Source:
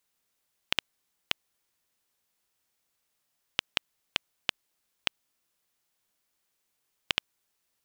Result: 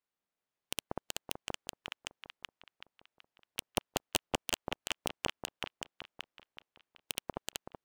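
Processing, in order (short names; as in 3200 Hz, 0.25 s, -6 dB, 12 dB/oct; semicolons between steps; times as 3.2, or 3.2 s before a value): LPF 1500 Hz 6 dB/oct; low shelf 130 Hz -7 dB; on a send: echo with dull and thin repeats by turns 0.189 s, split 920 Hz, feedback 81%, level -2.5 dB; on the sum: wavefolder -25 dBFS; upward expander 2.5:1, over -53 dBFS; gain +12.5 dB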